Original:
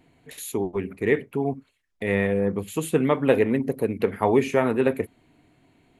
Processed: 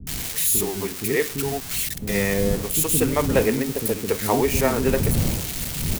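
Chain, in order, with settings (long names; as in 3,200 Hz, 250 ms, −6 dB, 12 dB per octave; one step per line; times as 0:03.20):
spike at every zero crossing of −17.5 dBFS
wind on the microphone 180 Hz −30 dBFS
multiband delay without the direct sound lows, highs 70 ms, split 320 Hz
on a send at −23 dB: convolution reverb RT60 1.3 s, pre-delay 102 ms
on the sum: level +1 dB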